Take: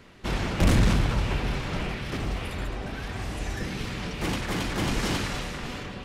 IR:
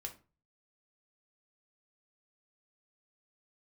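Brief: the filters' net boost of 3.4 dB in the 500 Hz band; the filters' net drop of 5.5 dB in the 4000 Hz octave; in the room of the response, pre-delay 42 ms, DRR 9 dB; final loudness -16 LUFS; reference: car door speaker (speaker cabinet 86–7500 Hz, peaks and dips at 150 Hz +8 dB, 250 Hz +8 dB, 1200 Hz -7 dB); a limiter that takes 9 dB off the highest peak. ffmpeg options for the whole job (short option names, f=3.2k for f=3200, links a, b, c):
-filter_complex "[0:a]equalizer=f=500:t=o:g=4,equalizer=f=4k:t=o:g=-7.5,alimiter=limit=-18.5dB:level=0:latency=1,asplit=2[a][b];[1:a]atrim=start_sample=2205,adelay=42[c];[b][c]afir=irnorm=-1:irlink=0,volume=-6dB[d];[a][d]amix=inputs=2:normalize=0,highpass=86,equalizer=f=150:t=q:w=4:g=8,equalizer=f=250:t=q:w=4:g=8,equalizer=f=1.2k:t=q:w=4:g=-7,lowpass=f=7.5k:w=0.5412,lowpass=f=7.5k:w=1.3066,volume=12.5dB"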